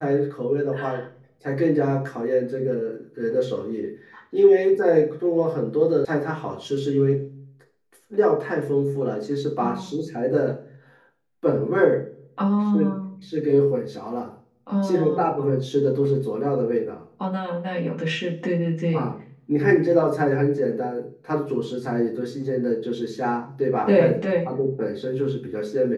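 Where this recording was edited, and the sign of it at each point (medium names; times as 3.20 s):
6.05 s: sound stops dead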